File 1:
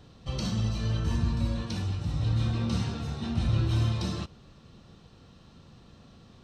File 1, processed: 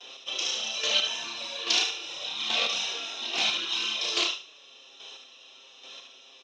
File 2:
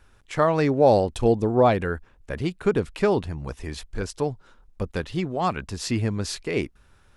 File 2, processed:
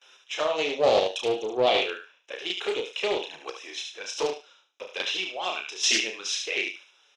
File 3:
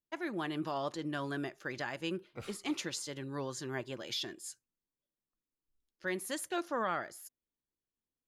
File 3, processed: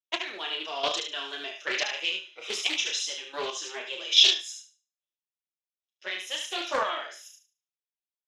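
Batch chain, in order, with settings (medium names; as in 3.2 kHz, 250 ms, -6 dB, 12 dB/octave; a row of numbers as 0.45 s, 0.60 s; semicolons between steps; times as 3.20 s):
touch-sensitive flanger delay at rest 8.3 ms, full sweep at -18.5 dBFS; Butterworth band-stop 4.5 kHz, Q 4.3; gate with hold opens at -54 dBFS; treble shelf 8.1 kHz -12 dB; doubling 32 ms -4.5 dB; square tremolo 1.2 Hz, depth 60%, duty 20%; high-pass 410 Hz 24 dB/octave; in parallel at -8 dB: saturation -26 dBFS; on the sum: high-order bell 4 kHz +15.5 dB; on a send: thinning echo 73 ms, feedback 27%, high-pass 1.2 kHz, level -4 dB; on the sum: loudness maximiser +12 dB; loudspeaker Doppler distortion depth 0.16 ms; normalise loudness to -27 LUFS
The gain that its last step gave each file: -5.0 dB, -10.5 dB, -4.5 dB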